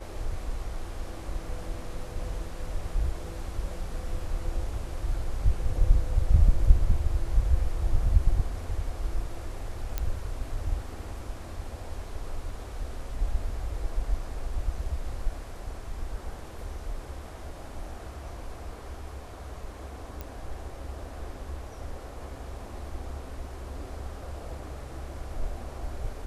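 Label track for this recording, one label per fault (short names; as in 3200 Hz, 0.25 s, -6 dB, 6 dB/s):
9.980000	9.980000	pop -14 dBFS
20.210000	20.210000	pop -22 dBFS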